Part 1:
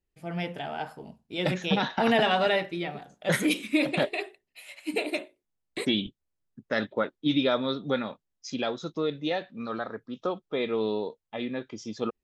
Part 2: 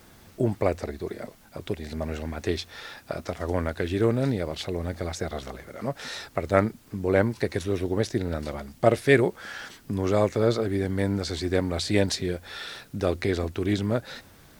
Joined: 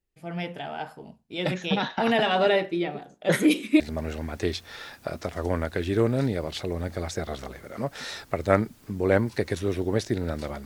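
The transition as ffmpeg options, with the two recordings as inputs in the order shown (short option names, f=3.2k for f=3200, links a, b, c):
-filter_complex "[0:a]asettb=1/sr,asplit=3[a][b][c];[a]atrim=end=2.354[d];[b]atrim=start=2.35:end=3.8,asetpts=PTS-STARTPTS,afade=t=in:d=0.004:c=qsin,afade=t=out:st=1.446:d=0.004:c=qsin,equalizer=f=360:w=1:g=7[e];[c]atrim=start=3.796[f];[d][e]acrossfade=d=0.004:c1=hsin:c2=qsin[g];[g][f]acrossfade=d=0.004:c1=qsin:c2=hsin,apad=whole_dur=10.65,atrim=end=10.65,atrim=end=3.802[h];[1:a]atrim=start=1.838:end=8.69[i];[h][i]acrossfade=d=0.004:c1=hsin:c2=hsin"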